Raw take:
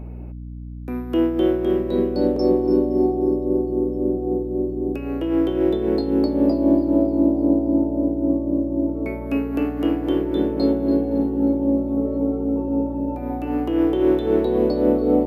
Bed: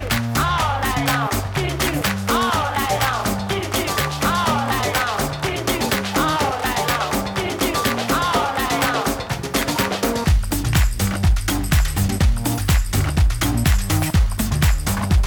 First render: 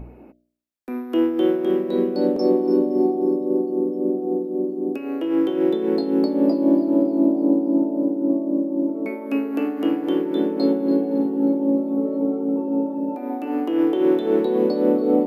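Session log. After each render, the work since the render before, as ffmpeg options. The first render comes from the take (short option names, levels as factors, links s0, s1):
-af "bandreject=f=60:t=h:w=4,bandreject=f=120:t=h:w=4,bandreject=f=180:t=h:w=4,bandreject=f=240:t=h:w=4,bandreject=f=300:t=h:w=4,bandreject=f=360:t=h:w=4,bandreject=f=420:t=h:w=4,bandreject=f=480:t=h:w=4,bandreject=f=540:t=h:w=4,bandreject=f=600:t=h:w=4,bandreject=f=660:t=h:w=4"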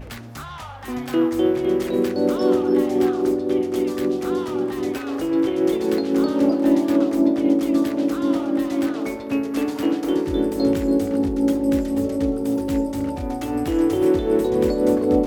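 -filter_complex "[1:a]volume=0.158[s0];[0:a][s0]amix=inputs=2:normalize=0"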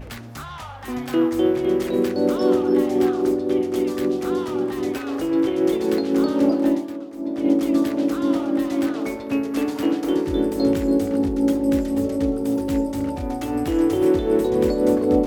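-filter_complex "[0:a]asplit=3[s0][s1][s2];[s0]atrim=end=7.03,asetpts=PTS-STARTPTS,afade=t=out:st=6.64:d=0.39:c=qua:silence=0.177828[s3];[s1]atrim=start=7.03:end=7.1,asetpts=PTS-STARTPTS,volume=0.178[s4];[s2]atrim=start=7.1,asetpts=PTS-STARTPTS,afade=t=in:d=0.39:c=qua:silence=0.177828[s5];[s3][s4][s5]concat=n=3:v=0:a=1"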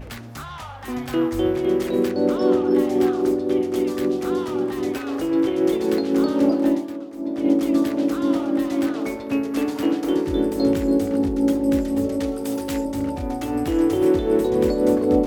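-filter_complex "[0:a]asplit=3[s0][s1][s2];[s0]afade=t=out:st=1.03:d=0.02[s3];[s1]asubboost=boost=8.5:cutoff=110,afade=t=in:st=1.03:d=0.02,afade=t=out:st=1.55:d=0.02[s4];[s2]afade=t=in:st=1.55:d=0.02[s5];[s3][s4][s5]amix=inputs=3:normalize=0,asettb=1/sr,asplit=3[s6][s7][s8];[s6]atrim=end=2.114[s9];[s7]atrim=start=2.11:end=2.71,asetpts=PTS-STARTPTS,afade=t=in:d=0.004:c=qsin,afade=t=out:st=0.596:d=0.004:c=qsin,highshelf=f=6600:g=-8[s10];[s8]atrim=start=2.706[s11];[s9][s10]acrossfade=d=0.004:c1=hsin:c2=qsin[s12];[s12][s11]acrossfade=d=0.004:c1=qsin:c2=hsin,asettb=1/sr,asplit=3[s13][s14][s15];[s13]atrim=end=12.204[s16];[s14]atrim=start=12.2:end=12.85,asetpts=PTS-STARTPTS,afade=t=in:d=0.004:c=qsin,afade=t=out:st=0.646:d=0.004:c=qsin,tiltshelf=f=660:g=-6[s17];[s15]atrim=start=12.846[s18];[s16][s17]acrossfade=d=0.004:c1=hsin:c2=qsin[s19];[s19][s18]acrossfade=d=0.004:c1=qsin:c2=hsin"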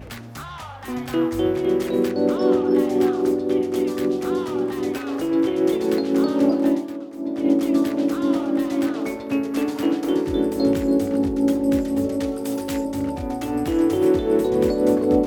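-af "highpass=56"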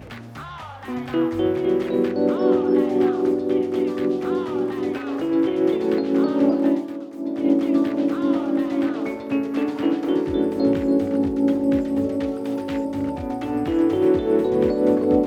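-filter_complex "[0:a]highpass=71,acrossover=split=3800[s0][s1];[s1]acompressor=threshold=0.00158:ratio=4:attack=1:release=60[s2];[s0][s2]amix=inputs=2:normalize=0"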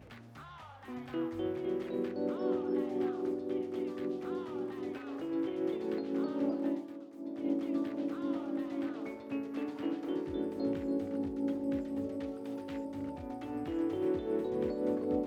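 -af "volume=0.188"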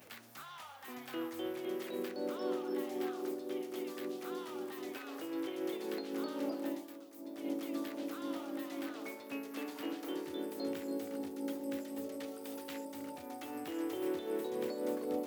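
-af "highpass=100,aemphasis=mode=production:type=riaa"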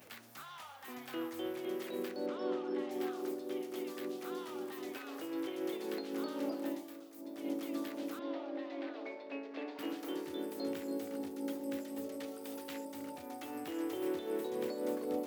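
-filter_complex "[0:a]asettb=1/sr,asplit=3[s0][s1][s2];[s0]atrim=end=2.264[s3];[s1]atrim=start=2.26:end=2.91,asetpts=PTS-STARTPTS,afade=t=in:d=0.004:c=qsin,afade=t=out:st=0.646:d=0.004:c=qsin,lowpass=4600[s4];[s2]atrim=start=2.906[s5];[s3][s4]acrossfade=d=0.004:c1=hsin:c2=qsin[s6];[s6][s5]acrossfade=d=0.004:c1=qsin:c2=hsin,asettb=1/sr,asplit=3[s7][s8][s9];[s7]atrim=end=6.804[s10];[s8]atrim=start=6.8:end=7.21,asetpts=PTS-STARTPTS,afade=t=in:d=0.004:c=qsin,afade=t=out:st=0.406:d=0.004:c=qsin,asplit=2[s11][s12];[s12]adelay=39,volume=0.398[s13];[s11][s13]amix=inputs=2:normalize=0,atrim=end_sample=18081[s14];[s9]atrim=start=7.206[s15];[s10][s14]acrossfade=d=0.004:c1=hsin:c2=qsin[s16];[s16][s15]acrossfade=d=0.004:c1=qsin:c2=hsin,asettb=1/sr,asplit=3[s17][s18][s19];[s17]atrim=end=8.194[s20];[s18]atrim=start=8.19:end=9.79,asetpts=PTS-STARTPTS,afade=t=in:d=0.004:c=qsin,afade=t=out:st=1.596:d=0.004:c=qsin,highpass=f=270:w=0.5412,highpass=f=270:w=1.3066,equalizer=f=620:t=q:w=4:g=6,equalizer=f=1300:t=q:w=4:g=-6,equalizer=f=3100:t=q:w=4:g=-4,lowpass=f=4100:w=0.5412,lowpass=f=4100:w=1.3066[s21];[s19]atrim=start=9.786[s22];[s20][s21]acrossfade=d=0.004:c1=hsin:c2=qsin[s23];[s23][s22]acrossfade=d=0.004:c1=qsin:c2=hsin"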